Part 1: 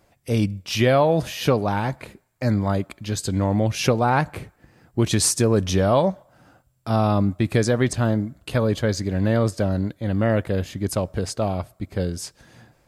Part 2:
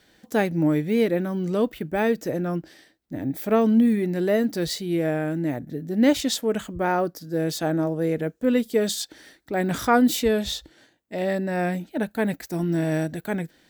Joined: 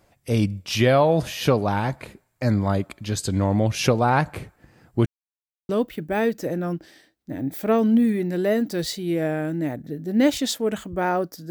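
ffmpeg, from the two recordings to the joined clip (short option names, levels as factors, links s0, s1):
-filter_complex "[0:a]apad=whole_dur=11.5,atrim=end=11.5,asplit=2[s0][s1];[s0]atrim=end=5.06,asetpts=PTS-STARTPTS,afade=t=out:st=5.056:d=0.004:c=hsin[s2];[s1]atrim=start=5.06:end=5.69,asetpts=PTS-STARTPTS,volume=0[s3];[1:a]atrim=start=1.52:end=7.33,asetpts=PTS-STARTPTS,afade=t=in:d=0.004:c=hsin[s4];[s2][s3][s4]concat=n=3:v=0:a=1"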